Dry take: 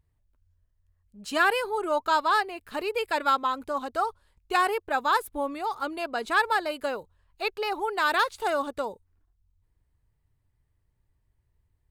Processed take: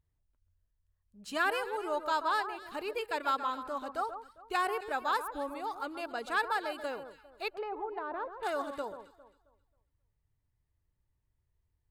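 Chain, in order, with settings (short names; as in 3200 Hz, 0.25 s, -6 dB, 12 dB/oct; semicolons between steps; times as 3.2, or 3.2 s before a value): echo with dull and thin repeats by turns 0.134 s, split 1500 Hz, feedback 51%, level -9 dB; 7.5–8.43 treble ducked by the level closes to 770 Hz, closed at -24 dBFS; gain -7.5 dB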